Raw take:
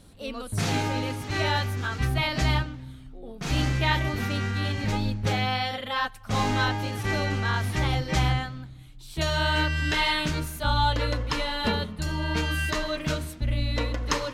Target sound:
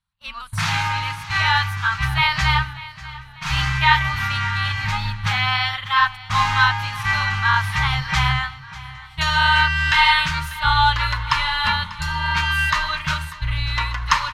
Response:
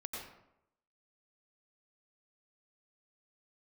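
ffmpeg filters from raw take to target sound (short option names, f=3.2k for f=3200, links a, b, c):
-af "agate=range=-33dB:threshold=-30dB:ratio=3:detection=peak,firequalizer=gain_entry='entry(150,0);entry(250,-19);entry(450,-25);entry(940,10);entry(7200,-1)':delay=0.05:min_phase=1,aecho=1:1:593|1186|1779|2372:0.133|0.0627|0.0295|0.0138,volume=2.5dB"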